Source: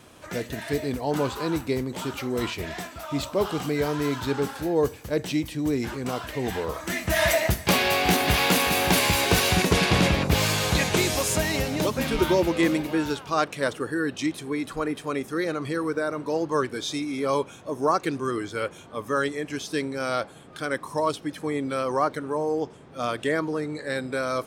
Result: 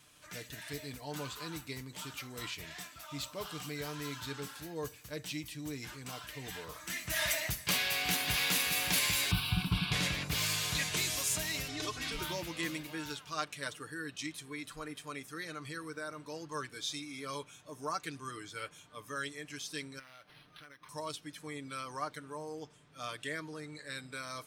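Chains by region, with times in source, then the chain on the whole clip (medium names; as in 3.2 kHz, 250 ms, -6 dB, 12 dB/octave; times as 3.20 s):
9.31–9.92 s: tone controls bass +10 dB, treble -7 dB + static phaser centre 1.9 kHz, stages 6
11.68–12.12 s: low-pass 7.2 kHz + transient shaper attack -5 dB, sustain +2 dB + comb 2.7 ms, depth 95%
19.99–20.89 s: treble shelf 3.6 kHz +11 dB + compression 12:1, threshold -36 dBFS + decimation joined by straight lines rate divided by 6×
whole clip: amplifier tone stack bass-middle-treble 5-5-5; band-stop 810 Hz, Q 14; comb 6.7 ms, depth 44%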